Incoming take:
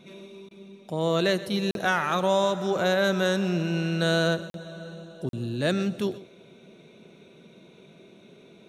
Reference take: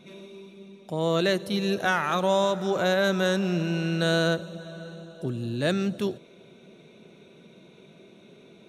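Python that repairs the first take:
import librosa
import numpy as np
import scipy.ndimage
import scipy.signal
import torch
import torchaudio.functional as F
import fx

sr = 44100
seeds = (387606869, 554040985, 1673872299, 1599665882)

y = fx.fix_interpolate(x, sr, at_s=(1.71, 4.5, 5.29), length_ms=42.0)
y = fx.fix_interpolate(y, sr, at_s=(0.49,), length_ms=18.0)
y = fx.fix_echo_inverse(y, sr, delay_ms=126, level_db=-17.0)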